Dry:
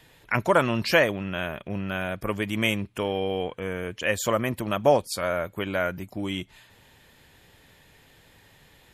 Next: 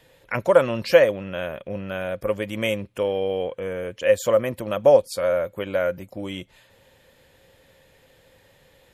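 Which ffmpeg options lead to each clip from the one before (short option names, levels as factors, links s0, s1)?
-af "equalizer=f=530:w=5.5:g=15,volume=0.75"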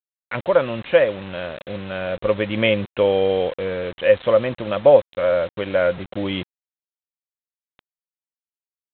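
-af "dynaudnorm=f=630:g=3:m=3.16,aresample=8000,acrusher=bits=5:mix=0:aa=0.000001,aresample=44100,volume=0.891"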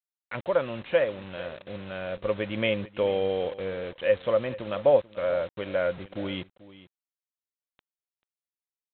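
-af "aecho=1:1:439:0.133,volume=0.398"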